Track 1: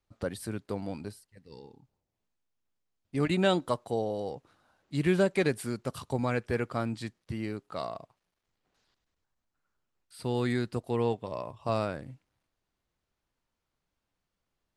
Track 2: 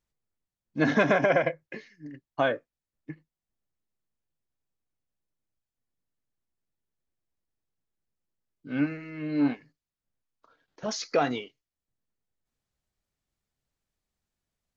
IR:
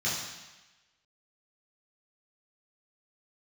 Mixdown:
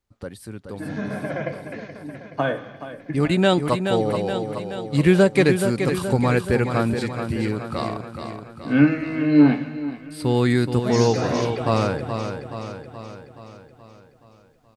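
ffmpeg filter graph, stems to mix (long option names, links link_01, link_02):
-filter_complex "[0:a]bandreject=frequency=650:width=12,volume=-1.5dB,asplit=3[link_01][link_02][link_03];[link_02]volume=-7.5dB[link_04];[1:a]acrossover=split=290[link_05][link_06];[link_06]acompressor=threshold=-25dB:ratio=6[link_07];[link_05][link_07]amix=inputs=2:normalize=0,volume=0dB,asplit=3[link_08][link_09][link_10];[link_09]volume=-17.5dB[link_11];[link_10]volume=-14.5dB[link_12];[link_03]apad=whole_len=650945[link_13];[link_08][link_13]sidechaincompress=threshold=-45dB:ratio=8:attack=8.6:release=434[link_14];[2:a]atrim=start_sample=2205[link_15];[link_11][link_15]afir=irnorm=-1:irlink=0[link_16];[link_04][link_12]amix=inputs=2:normalize=0,aecho=0:1:425|850|1275|1700|2125|2550|2975|3400:1|0.56|0.314|0.176|0.0983|0.0551|0.0308|0.0173[link_17];[link_01][link_14][link_16][link_17]amix=inputs=4:normalize=0,lowshelf=frequency=190:gain=3,dynaudnorm=framelen=530:gausssize=11:maxgain=11.5dB"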